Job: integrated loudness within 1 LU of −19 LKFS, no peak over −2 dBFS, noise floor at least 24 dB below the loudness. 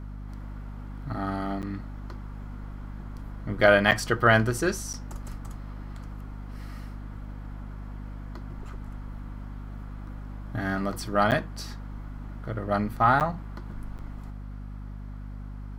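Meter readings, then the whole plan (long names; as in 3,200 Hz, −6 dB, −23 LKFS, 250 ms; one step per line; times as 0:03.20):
number of dropouts 6; longest dropout 8.7 ms; mains hum 50 Hz; hum harmonics up to 250 Hz; level of the hum −35 dBFS; integrated loudness −26.0 LKFS; sample peak −4.5 dBFS; target loudness −19.0 LKFS
→ repair the gap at 0:01.62/0:03.91/0:04.93/0:11.31/0:13.20/0:13.98, 8.7 ms
hum removal 50 Hz, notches 5
level +7 dB
brickwall limiter −2 dBFS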